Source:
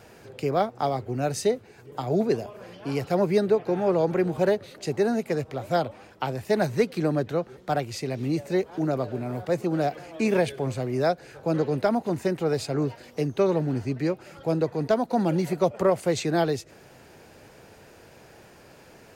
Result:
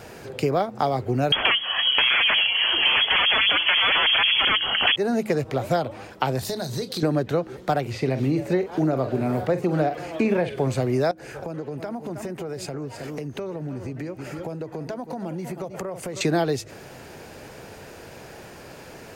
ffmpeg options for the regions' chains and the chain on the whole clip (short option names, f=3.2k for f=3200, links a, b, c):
-filter_complex "[0:a]asettb=1/sr,asplit=3[a][b][c];[a]atrim=end=1.324[d];[b]atrim=start=1.32:end=4.96,asetpts=PTS-STARTPTS,afade=t=in:d=0.004:c=qsin,afade=t=out:st=3.636:d=0.004:c=qsin,aemphasis=mode=production:type=cd,aeval=exprs='0.299*sin(PI/2*7.94*val(0)/0.299)':c=same,lowpass=f=2.9k:t=q:w=0.5098,lowpass=f=2.9k:t=q:w=0.6013,lowpass=f=2.9k:t=q:w=0.9,lowpass=f=2.9k:t=q:w=2.563,afreqshift=-3400[e];[c]atrim=start=4.956[f];[d][e]acrossfade=d=0.004:c1=hsin:c2=qsin[g];[g][f]acrossfade=d=0.004:c1=qsin:c2=hsin,asettb=1/sr,asplit=3[h][i][j];[h]atrim=end=6.394[k];[i]atrim=start=6.39:end=7.03,asetpts=PTS-STARTPTS,afade=t=in:d=0.004:c=qsin,afade=t=out:st=0.636:d=0.004:c=qsin,highshelf=f=3.1k:t=q:w=3:g=7,acompressor=threshold=-34dB:ratio=8:attack=3.2:release=140:knee=1:detection=peak,asplit=2[l][m];[m]adelay=31,volume=-12dB[n];[l][n]amix=inputs=2:normalize=0,atrim=end_sample=28224[o];[j]atrim=start=7.026[p];[k][o]acrossfade=d=0.004:c1=hsin:c2=qsin[q];[q][p]acrossfade=d=0.004:c1=qsin:c2=hsin,asettb=1/sr,asplit=3[r][s][t];[r]atrim=end=7.814[u];[s]atrim=start=7.81:end=10.61,asetpts=PTS-STARTPTS,afade=t=in:d=0.004:c=qsin,afade=t=out:st=2.796:d=0.004:c=qsin,acrossover=split=3200[v][w];[w]acompressor=threshold=-54dB:ratio=4:attack=1:release=60[x];[v][x]amix=inputs=2:normalize=0,asplit=2[y][z];[z]adelay=45,volume=-11dB[aa];[y][aa]amix=inputs=2:normalize=0,atrim=end_sample=123480[ab];[t]atrim=start=10.606[ac];[u][ab]acrossfade=d=0.004:c1=hsin:c2=qsin[ad];[ad][ac]acrossfade=d=0.004:c1=qsin:c2=hsin,asettb=1/sr,asplit=3[ae][af][ag];[ae]atrim=end=11.114[ah];[af]atrim=start=11.11:end=16.21,asetpts=PTS-STARTPTS,afade=t=in:d=0.004:c=qsin,afade=t=out:st=5.096:d=0.004:c=qsin,equalizer=f=4k:w=2.9:g=-6.5,aecho=1:1:314:0.178,atrim=end_sample=224910,acompressor=threshold=-37dB:ratio=8:attack=3.2:release=140:knee=1:detection=peak[ai];[ag]atrim=start=16.206[aj];[ah][ai]acrossfade=d=0.004:c1=hsin:c2=qsin[ak];[ak][aj]acrossfade=d=0.004:c1=qsin:c2=hsin,bandreject=f=107:t=h:w=4,bandreject=f=214:t=h:w=4,bandreject=f=321:t=h:w=4,acompressor=threshold=-27dB:ratio=6,volume=8.5dB"